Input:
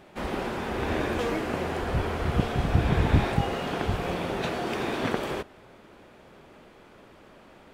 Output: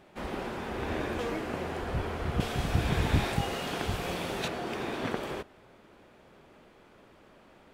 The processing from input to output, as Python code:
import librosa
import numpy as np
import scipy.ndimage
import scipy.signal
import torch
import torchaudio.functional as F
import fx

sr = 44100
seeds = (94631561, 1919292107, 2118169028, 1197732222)

y = fx.high_shelf(x, sr, hz=3100.0, db=11.0, at=(2.4, 4.48))
y = y * 10.0 ** (-5.0 / 20.0)